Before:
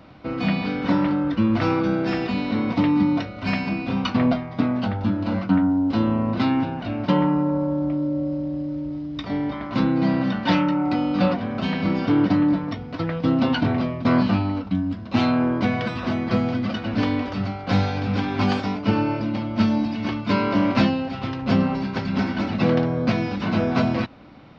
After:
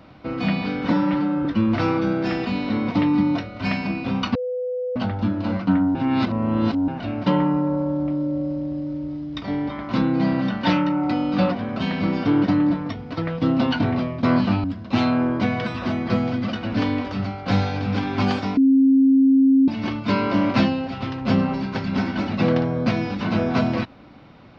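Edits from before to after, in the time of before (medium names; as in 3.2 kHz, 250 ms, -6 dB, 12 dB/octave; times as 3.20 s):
0.91–1.27 s: stretch 1.5×
4.17–4.78 s: bleep 500 Hz -23 dBFS
5.77–6.70 s: reverse
14.46–14.85 s: delete
18.78–19.89 s: bleep 268 Hz -11.5 dBFS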